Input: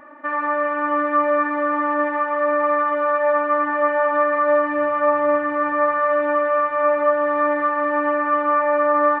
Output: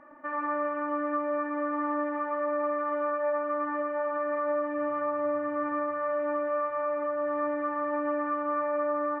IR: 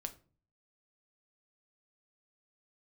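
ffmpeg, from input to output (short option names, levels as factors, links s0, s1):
-filter_complex "[0:a]lowpass=f=1500:p=1,alimiter=limit=0.168:level=0:latency=1:release=404,asplit=2[s0][s1];[1:a]atrim=start_sample=2205,lowshelf=f=350:g=11,adelay=112[s2];[s1][s2]afir=irnorm=-1:irlink=0,volume=0.335[s3];[s0][s3]amix=inputs=2:normalize=0,volume=0.422"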